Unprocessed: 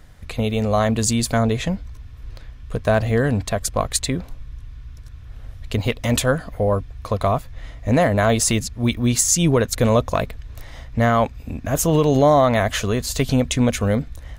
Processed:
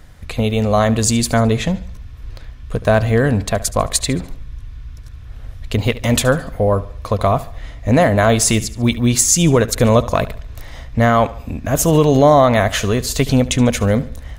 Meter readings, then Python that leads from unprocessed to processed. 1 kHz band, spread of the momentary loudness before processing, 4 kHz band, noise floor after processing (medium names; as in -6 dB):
+4.0 dB, 15 LU, +4.0 dB, -35 dBFS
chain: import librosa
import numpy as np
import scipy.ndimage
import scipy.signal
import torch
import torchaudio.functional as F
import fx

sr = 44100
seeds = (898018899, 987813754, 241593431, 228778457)

y = fx.echo_feedback(x, sr, ms=72, feedback_pct=43, wet_db=-17.5)
y = y * librosa.db_to_amplitude(4.0)